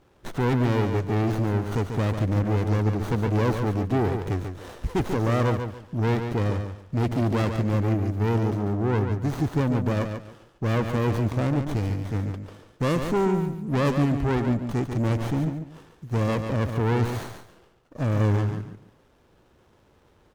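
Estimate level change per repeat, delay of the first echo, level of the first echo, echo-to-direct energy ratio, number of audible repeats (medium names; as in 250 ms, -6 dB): -12.5 dB, 142 ms, -7.0 dB, -6.5 dB, 3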